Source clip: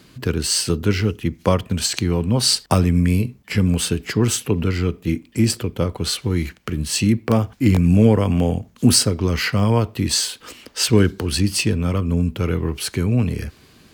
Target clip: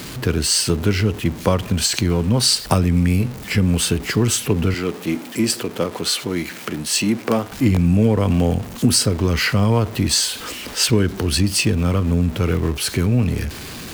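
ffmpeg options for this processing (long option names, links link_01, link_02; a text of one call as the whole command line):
ffmpeg -i in.wav -filter_complex "[0:a]aeval=exprs='val(0)+0.5*0.0335*sgn(val(0))':channel_layout=same,asettb=1/sr,asplit=3[link_01][link_02][link_03];[link_01]atrim=end=4.744[link_04];[link_02]atrim=start=4.74:end=7.52,asetpts=PTS-STARTPTS,afade=type=in:duration=0.004:curve=qsin,afade=type=out:start_time=2.776:duration=0.004:curve=qsin,highpass=230[link_05];[link_03]atrim=start=7.516[link_06];[link_04][link_05]acrossfade=duration=0.004:curve1=hsin:curve2=qsin[link_07];[link_07][link_06]acrossfade=duration=0.004:curve1=qsin:curve2=hsin,acompressor=threshold=-13dB:ratio=4,volume=1.5dB" out.wav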